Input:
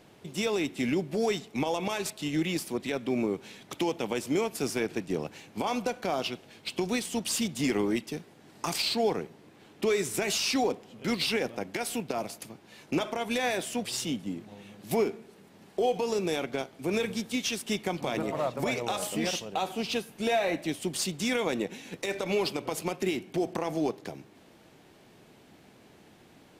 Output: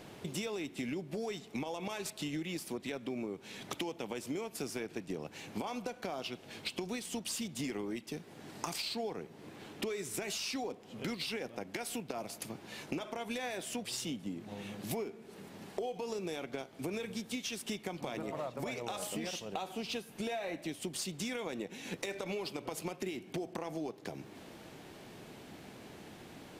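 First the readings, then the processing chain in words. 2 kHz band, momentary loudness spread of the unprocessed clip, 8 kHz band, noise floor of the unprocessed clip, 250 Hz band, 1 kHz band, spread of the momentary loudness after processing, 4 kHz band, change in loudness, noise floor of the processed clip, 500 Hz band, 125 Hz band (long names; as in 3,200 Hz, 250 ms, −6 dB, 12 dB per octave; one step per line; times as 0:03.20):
−8.5 dB, 9 LU, −7.0 dB, −57 dBFS, −8.5 dB, −9.5 dB, 12 LU, −8.0 dB, −9.0 dB, −54 dBFS, −10.0 dB, −7.5 dB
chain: downward compressor 6 to 1, threshold −42 dBFS, peak gain reduction 18.5 dB
level +5 dB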